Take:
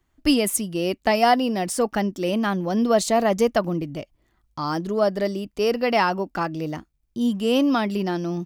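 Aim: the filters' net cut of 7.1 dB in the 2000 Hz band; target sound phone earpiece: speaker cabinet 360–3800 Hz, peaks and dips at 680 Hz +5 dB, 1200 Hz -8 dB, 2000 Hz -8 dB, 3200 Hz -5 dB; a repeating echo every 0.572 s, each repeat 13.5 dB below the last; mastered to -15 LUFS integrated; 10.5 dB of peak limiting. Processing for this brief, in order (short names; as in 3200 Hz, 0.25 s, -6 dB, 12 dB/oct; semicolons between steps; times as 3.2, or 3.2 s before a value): bell 2000 Hz -3.5 dB; limiter -17.5 dBFS; speaker cabinet 360–3800 Hz, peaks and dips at 680 Hz +5 dB, 1200 Hz -8 dB, 2000 Hz -8 dB, 3200 Hz -5 dB; feedback echo 0.572 s, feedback 21%, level -13.5 dB; gain +14 dB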